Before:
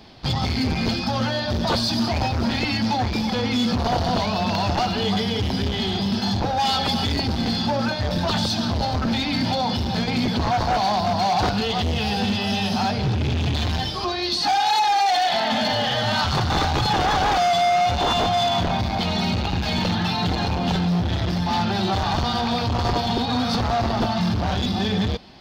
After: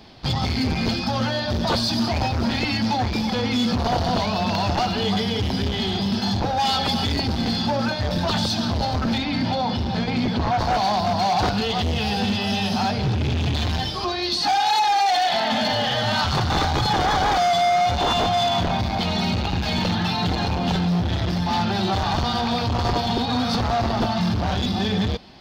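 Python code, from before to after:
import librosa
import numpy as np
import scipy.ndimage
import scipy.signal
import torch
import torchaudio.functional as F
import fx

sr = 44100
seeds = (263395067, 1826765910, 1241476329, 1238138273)

y = fx.peak_eq(x, sr, hz=13000.0, db=-11.5, octaves=1.7, at=(9.18, 10.59))
y = fx.notch(y, sr, hz=2700.0, q=11.0, at=(16.65, 17.98))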